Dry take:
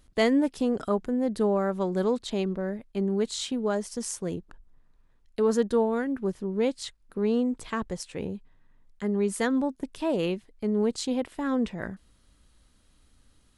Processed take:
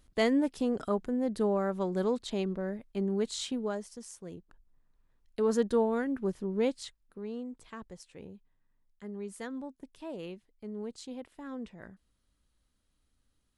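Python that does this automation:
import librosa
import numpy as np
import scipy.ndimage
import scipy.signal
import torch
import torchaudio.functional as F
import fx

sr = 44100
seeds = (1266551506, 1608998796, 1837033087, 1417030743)

y = fx.gain(x, sr, db=fx.line((3.55, -4.0), (4.07, -14.0), (5.63, -3.0), (6.68, -3.0), (7.23, -14.0)))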